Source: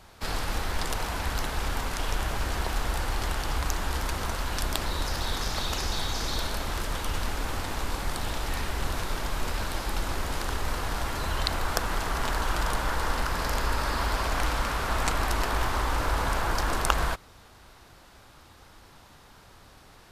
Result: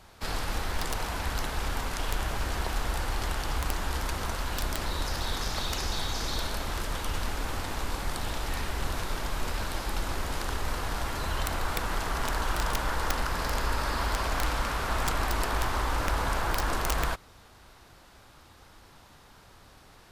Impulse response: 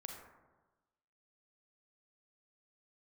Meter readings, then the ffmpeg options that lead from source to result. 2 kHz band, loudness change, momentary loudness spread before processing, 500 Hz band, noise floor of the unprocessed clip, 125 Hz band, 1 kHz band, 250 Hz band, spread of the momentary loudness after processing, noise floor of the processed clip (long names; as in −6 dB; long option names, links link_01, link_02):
−1.5 dB, −1.5 dB, 4 LU, −1.5 dB, −53 dBFS, −1.5 dB, −1.5 dB, −1.5 dB, 4 LU, −55 dBFS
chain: -af "aeval=exprs='(mod(5.62*val(0)+1,2)-1)/5.62':channel_layout=same,volume=-1.5dB"